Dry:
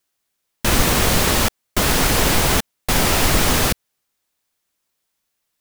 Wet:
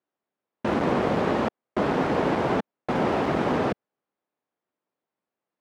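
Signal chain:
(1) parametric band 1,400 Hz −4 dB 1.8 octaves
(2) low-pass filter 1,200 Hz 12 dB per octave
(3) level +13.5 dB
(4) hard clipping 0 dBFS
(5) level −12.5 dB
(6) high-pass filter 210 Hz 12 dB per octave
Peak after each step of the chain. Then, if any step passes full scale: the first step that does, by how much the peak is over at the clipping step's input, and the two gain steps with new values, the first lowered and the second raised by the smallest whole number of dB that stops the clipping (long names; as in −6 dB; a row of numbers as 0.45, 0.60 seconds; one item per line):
−2.5, −5.5, +8.0, 0.0, −12.5, −10.5 dBFS
step 3, 8.0 dB
step 3 +5.5 dB, step 5 −4.5 dB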